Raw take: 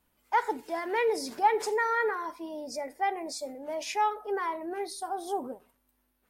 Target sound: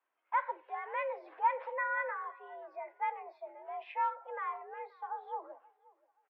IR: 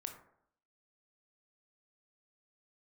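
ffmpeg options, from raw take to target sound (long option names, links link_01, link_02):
-filter_complex "[0:a]acrossover=split=500 2400:gain=0.112 1 0.112[link_01][link_02][link_03];[link_01][link_02][link_03]amix=inputs=3:normalize=0,asplit=2[link_04][link_05];[link_05]adelay=528,lowpass=frequency=2300:poles=1,volume=-23dB,asplit=2[link_06][link_07];[link_07]adelay=528,lowpass=frequency=2300:poles=1,volume=0.29[link_08];[link_04][link_06][link_08]amix=inputs=3:normalize=0,highpass=frequency=150:width_type=q:width=0.5412,highpass=frequency=150:width_type=q:width=1.307,lowpass=frequency=3300:width_type=q:width=0.5176,lowpass=frequency=3300:width_type=q:width=0.7071,lowpass=frequency=3300:width_type=q:width=1.932,afreqshift=81,volume=-4.5dB"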